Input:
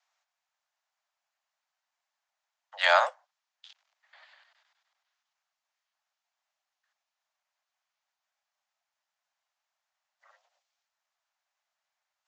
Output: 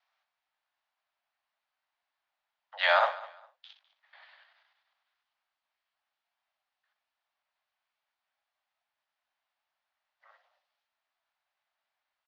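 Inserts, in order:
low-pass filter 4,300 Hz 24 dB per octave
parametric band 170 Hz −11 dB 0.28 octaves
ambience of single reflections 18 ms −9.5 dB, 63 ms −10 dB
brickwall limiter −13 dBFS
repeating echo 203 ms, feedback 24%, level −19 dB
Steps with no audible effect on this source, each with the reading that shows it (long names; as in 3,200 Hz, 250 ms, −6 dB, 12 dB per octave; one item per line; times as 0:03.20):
parametric band 170 Hz: nothing at its input below 450 Hz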